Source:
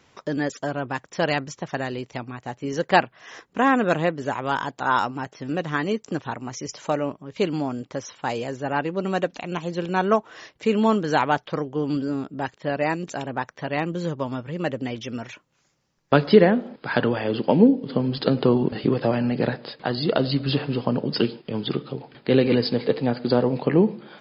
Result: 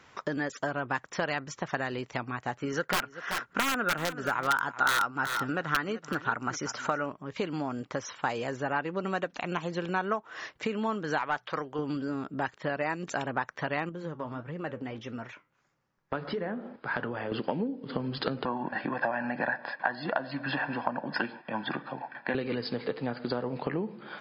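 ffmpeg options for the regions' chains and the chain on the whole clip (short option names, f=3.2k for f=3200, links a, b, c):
-filter_complex "[0:a]asettb=1/sr,asplit=3[a][b][c];[a]atrim=end=2.584[d];[b]atrim=start=2.58:end=7.06,asetpts=PTS-STARTPTS,afade=t=in:d=0.004:c=qsin,afade=t=out:st=4.476:d=0.004:c=qsin,equalizer=f=1.4k:w=5.8:g=12,aeval=exprs='(mod(2.82*val(0)+1,2)-1)/2.82':c=same,aecho=1:1:381:0.141,atrim=end_sample=197568[e];[c]atrim=start=7.056[f];[d][e]acrossfade=d=0.004:c1=hsin:c2=qsin[g];[g][f]acrossfade=d=0.004:c1=qsin:c2=hsin,asettb=1/sr,asplit=3[h][i][j];[h]atrim=end=11.184[k];[i]atrim=start=11.18:end=11.79,asetpts=PTS-STARTPTS,afade=t=in:d=0.004:c=qsin,afade=t=out:st=0.606:d=0.004:c=qsin,lowshelf=f=480:g=-9.5,bandreject=f=60:t=h:w=6,bandreject=f=120:t=h:w=6,bandreject=f=180:t=h:w=6,aeval=exprs='(tanh(3.98*val(0)+0.2)-tanh(0.2))/3.98':c=same[l];[j]atrim=start=11.786[m];[k][l]acrossfade=d=0.004:c1=hsin:c2=qsin[n];[n][m]acrossfade=d=0.004:c1=qsin:c2=hsin,asettb=1/sr,asplit=3[o][p][q];[o]atrim=end=13.894[r];[p]atrim=start=13.89:end=17.32,asetpts=PTS-STARTPTS,afade=t=in:d=0.004:c=qsin,afade=t=out:st=3.426:d=0.004:c=qsin,highshelf=f=2.6k:g=-10,acompressor=threshold=-28dB:ratio=2:attack=3.2:release=140:knee=1:detection=peak,flanger=delay=6.5:depth=5.2:regen=-75:speed=1.6:shape=triangular[s];[q]atrim=start=17.316[t];[r][s]acrossfade=d=0.004:c1=hsin:c2=qsin[u];[u][t]acrossfade=d=0.004:c1=qsin:c2=hsin,asettb=1/sr,asplit=3[v][w][x];[v]atrim=end=18.454[y];[w]atrim=start=18.45:end=22.35,asetpts=PTS-STARTPTS,afade=t=in:d=0.004:c=qsin,afade=t=out:st=3.896:d=0.004:c=qsin,highpass=330,lowpass=5.8k,highshelf=f=2.5k:t=q:w=1.5:g=-9.5,aecho=1:1:1.2:0.85,atrim=end_sample=171990[z];[x]atrim=start=22.346[aa];[y][z]acrossfade=d=0.004:c1=hsin:c2=qsin[ab];[ab][aa]acrossfade=d=0.004:c1=qsin:c2=hsin,acompressor=threshold=-28dB:ratio=6,equalizer=f=1.4k:t=o:w=1.5:g=8,volume=-2dB"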